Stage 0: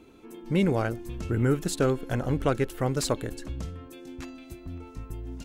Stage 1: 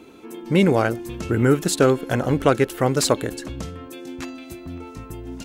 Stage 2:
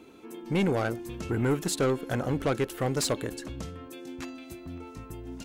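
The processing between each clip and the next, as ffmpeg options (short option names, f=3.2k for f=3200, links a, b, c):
-af "highpass=f=180:p=1,volume=9dB"
-af "asoftclip=type=tanh:threshold=-13.5dB,volume=-6dB"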